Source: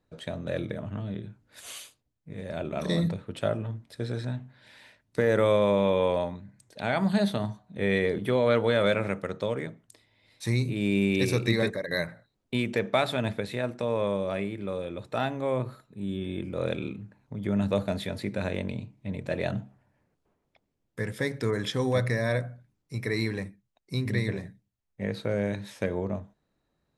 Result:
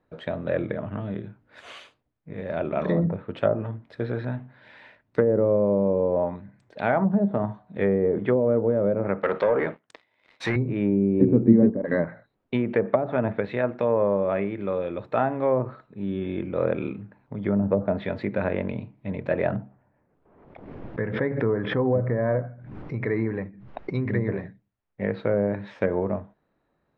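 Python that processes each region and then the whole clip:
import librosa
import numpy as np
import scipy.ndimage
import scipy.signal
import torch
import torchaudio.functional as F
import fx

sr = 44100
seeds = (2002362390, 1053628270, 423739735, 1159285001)

y = fx.chain(x, sr, fx.highpass(hz=530.0, slope=6),
    fx.leveller(passes=3), at=(9.23, 10.56))
y = fx.chain(y, sr, fx.peak_eq(hz=240.0, db=12.5, octaves=0.67),
    fx.backlash(play_db=-41.0), at=(11.21, 12.05))
y = fx.chain(y, sr, fx.spacing_loss(db_at_10k=29),
    fx.pre_swell(db_per_s=48.0), at=(19.56, 23.95))
y = scipy.signal.sosfilt(scipy.signal.butter(2, 2000.0, 'lowpass', fs=sr, output='sos'), y)
y = fx.env_lowpass_down(y, sr, base_hz=440.0, full_db=-20.5)
y = fx.low_shelf(y, sr, hz=200.0, db=-8.5)
y = F.gain(torch.from_numpy(y), 7.5).numpy()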